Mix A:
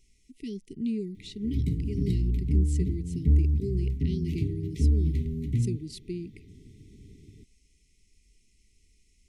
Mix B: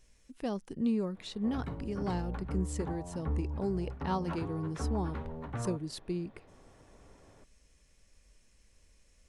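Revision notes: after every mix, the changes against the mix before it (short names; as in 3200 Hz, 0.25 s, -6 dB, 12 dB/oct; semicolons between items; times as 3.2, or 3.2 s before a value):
background: add three-band isolator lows -13 dB, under 400 Hz, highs -18 dB, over 3300 Hz; master: remove brick-wall FIR band-stop 450–1900 Hz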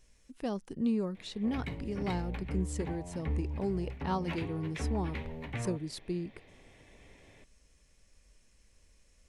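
background: add resonant high shelf 1700 Hz +8 dB, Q 3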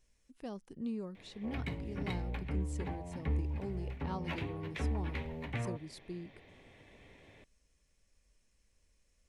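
speech -8.5 dB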